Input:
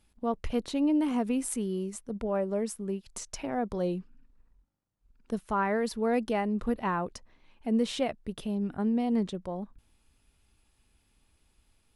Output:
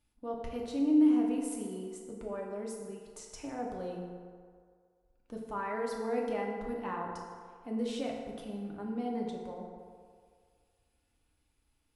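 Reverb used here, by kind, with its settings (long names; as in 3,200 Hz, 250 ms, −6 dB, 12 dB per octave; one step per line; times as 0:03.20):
feedback delay network reverb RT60 2 s, low-frequency decay 0.7×, high-frequency decay 0.5×, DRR −1.5 dB
level −10.5 dB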